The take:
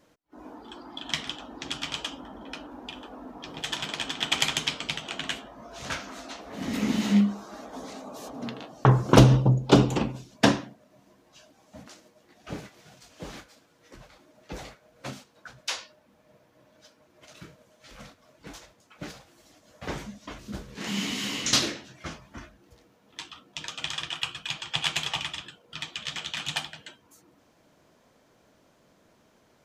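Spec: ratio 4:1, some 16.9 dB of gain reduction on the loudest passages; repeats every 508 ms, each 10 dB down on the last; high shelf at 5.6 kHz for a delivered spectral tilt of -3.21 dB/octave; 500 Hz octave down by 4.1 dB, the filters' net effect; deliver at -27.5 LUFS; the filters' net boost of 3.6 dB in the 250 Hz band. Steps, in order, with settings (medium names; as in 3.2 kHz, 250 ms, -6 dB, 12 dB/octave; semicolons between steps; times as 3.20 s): peaking EQ 250 Hz +6.5 dB; peaking EQ 500 Hz -8 dB; treble shelf 5.6 kHz +7 dB; compression 4:1, threshold -30 dBFS; feedback delay 508 ms, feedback 32%, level -10 dB; trim +8 dB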